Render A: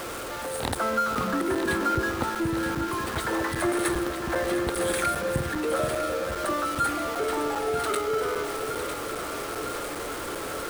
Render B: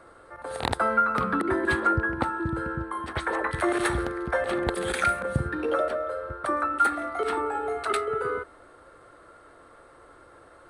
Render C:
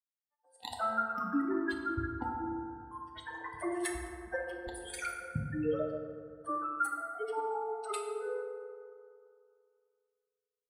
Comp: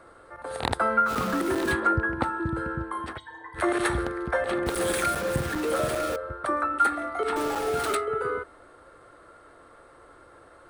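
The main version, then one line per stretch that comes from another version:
B
0:01.08–0:01.72: punch in from A, crossfade 0.06 s
0:03.16–0:03.57: punch in from C, crossfade 0.06 s
0:04.66–0:06.16: punch in from A
0:07.36–0:07.95: punch in from A

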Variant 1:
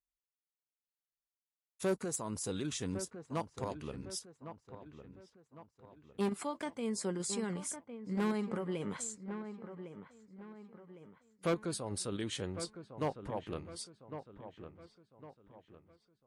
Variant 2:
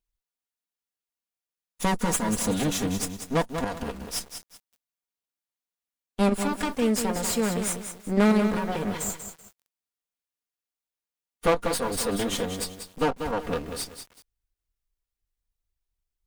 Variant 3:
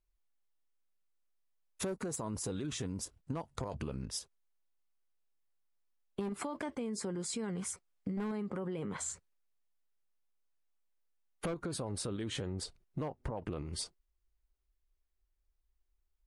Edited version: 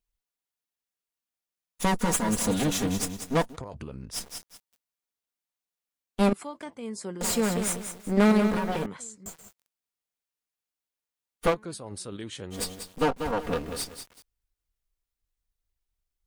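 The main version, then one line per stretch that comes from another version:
2
0:03.52–0:04.16: punch in from 3, crossfade 0.10 s
0:06.33–0:07.21: punch in from 1
0:08.86–0:09.26: punch in from 1
0:11.52–0:12.55: punch in from 1, crossfade 0.10 s

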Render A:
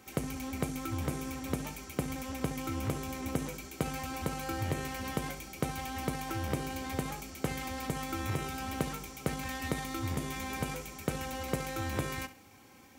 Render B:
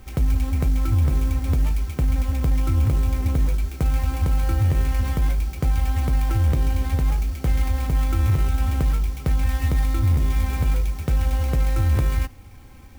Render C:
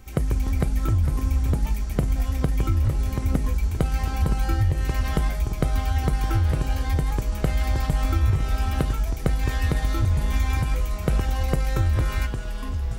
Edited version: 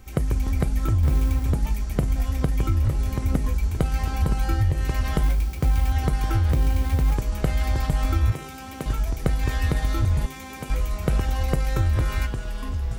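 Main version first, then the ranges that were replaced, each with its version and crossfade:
C
0:01.03–0:01.44: punch in from B
0:05.23–0:05.92: punch in from B
0:06.51–0:07.14: punch in from B
0:08.32–0:08.86: punch in from A
0:10.26–0:10.70: punch in from A

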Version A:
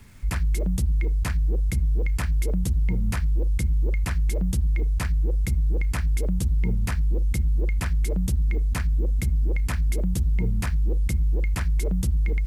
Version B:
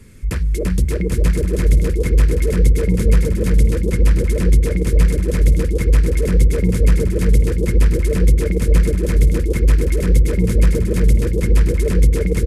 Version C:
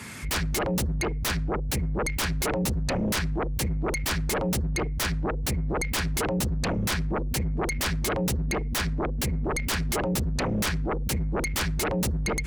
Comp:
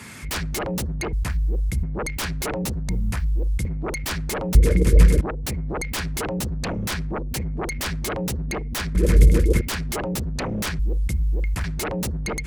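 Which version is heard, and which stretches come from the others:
C
0:01.13–0:01.83: punch in from A
0:02.89–0:03.65: punch in from A
0:04.55–0:05.21: punch in from B
0:08.95–0:09.61: punch in from B
0:10.79–0:11.64: punch in from A

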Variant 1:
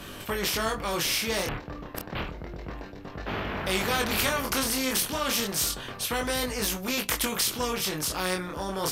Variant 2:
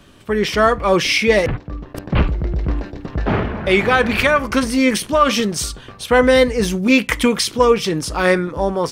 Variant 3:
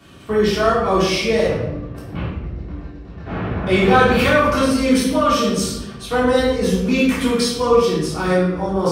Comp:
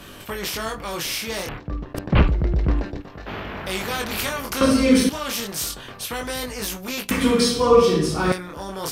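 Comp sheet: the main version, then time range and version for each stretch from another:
1
0:01.60–0:03.02: punch in from 2
0:04.61–0:05.09: punch in from 3
0:07.11–0:08.32: punch in from 3

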